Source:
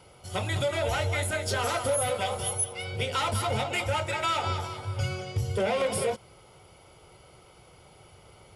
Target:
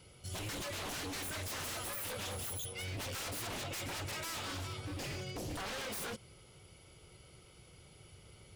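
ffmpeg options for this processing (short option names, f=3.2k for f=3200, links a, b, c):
-af "equalizer=f=840:w=0.85:g=-12,aeval=exprs='0.0188*(abs(mod(val(0)/0.0188+3,4)-2)-1)':c=same,volume=-1.5dB"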